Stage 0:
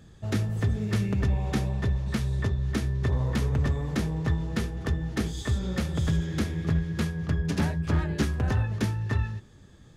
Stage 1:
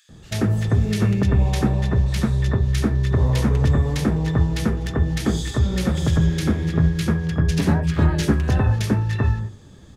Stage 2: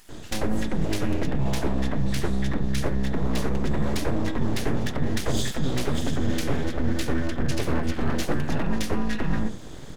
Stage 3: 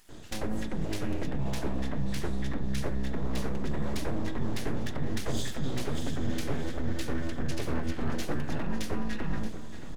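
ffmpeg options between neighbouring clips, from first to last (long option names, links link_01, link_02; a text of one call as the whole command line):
ffmpeg -i in.wav -filter_complex "[0:a]bandreject=frequency=50:width_type=h:width=6,bandreject=frequency=100:width_type=h:width=6,acrossover=split=1800[link_01][link_02];[link_01]adelay=90[link_03];[link_03][link_02]amix=inputs=2:normalize=0,volume=8dB" out.wav
ffmpeg -i in.wav -af "areverse,acompressor=threshold=-26dB:ratio=12,areverse,aeval=exprs='abs(val(0))':channel_layout=same,volume=8dB" out.wav
ffmpeg -i in.wav -af "aecho=1:1:627|1254|1881|2508|3135|3762:0.211|0.12|0.0687|0.0391|0.0223|0.0127,volume=-7dB" out.wav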